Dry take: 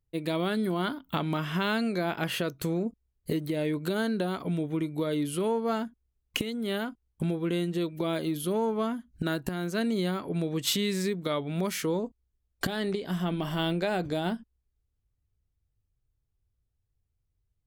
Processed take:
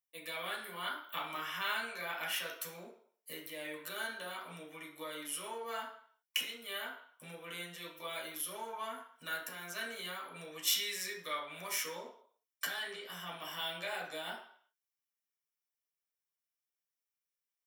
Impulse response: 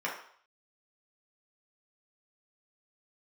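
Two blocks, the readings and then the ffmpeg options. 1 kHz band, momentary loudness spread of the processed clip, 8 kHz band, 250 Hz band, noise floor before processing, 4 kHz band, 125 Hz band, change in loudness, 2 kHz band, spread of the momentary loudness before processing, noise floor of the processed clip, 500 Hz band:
-7.0 dB, 12 LU, -1.0 dB, -25.0 dB, -79 dBFS, -3.0 dB, -26.0 dB, -9.0 dB, -3.0 dB, 5 LU, under -85 dBFS, -15.5 dB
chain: -filter_complex "[0:a]aderivative[a];[1:a]atrim=start_sample=2205[b];[a][b]afir=irnorm=-1:irlink=0,volume=2dB"

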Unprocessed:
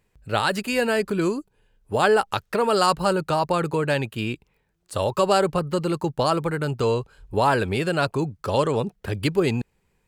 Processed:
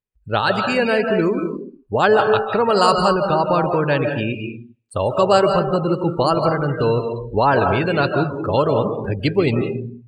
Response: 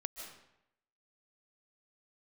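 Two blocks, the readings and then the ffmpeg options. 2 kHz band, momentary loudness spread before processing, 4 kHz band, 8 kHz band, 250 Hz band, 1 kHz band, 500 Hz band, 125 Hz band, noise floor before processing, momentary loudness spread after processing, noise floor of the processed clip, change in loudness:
+4.5 dB, 9 LU, +3.0 dB, -4.0 dB, +5.0 dB, +5.0 dB, +5.5 dB, +4.5 dB, -70 dBFS, 9 LU, -52 dBFS, +5.0 dB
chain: -filter_complex "[1:a]atrim=start_sample=2205[a];[0:a][a]afir=irnorm=-1:irlink=0,afftdn=nr=28:nf=-35,volume=6.5dB"

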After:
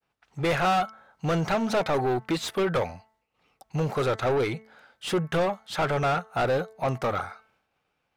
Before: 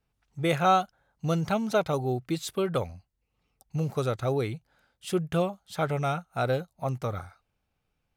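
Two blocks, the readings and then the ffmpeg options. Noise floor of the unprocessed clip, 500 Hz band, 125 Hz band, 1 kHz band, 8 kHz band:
-79 dBFS, +2.5 dB, -0.5 dB, +2.0 dB, +1.5 dB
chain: -filter_complex "[0:a]asplit=2[a][b];[b]highpass=f=720:p=1,volume=28dB,asoftclip=type=tanh:threshold=-10dB[c];[a][c]amix=inputs=2:normalize=0,lowpass=f=2.1k:p=1,volume=-6dB,agate=range=-33dB:threshold=-59dB:ratio=3:detection=peak,bandreject=f=219.9:t=h:w=4,bandreject=f=439.8:t=h:w=4,bandreject=f=659.7:t=h:w=4,bandreject=f=879.6:t=h:w=4,bandreject=f=1.0995k:t=h:w=4,bandreject=f=1.3194k:t=h:w=4,bandreject=f=1.5393k:t=h:w=4,bandreject=f=1.7592k:t=h:w=4,bandreject=f=1.9791k:t=h:w=4,bandreject=f=2.199k:t=h:w=4,volume=-5.5dB"

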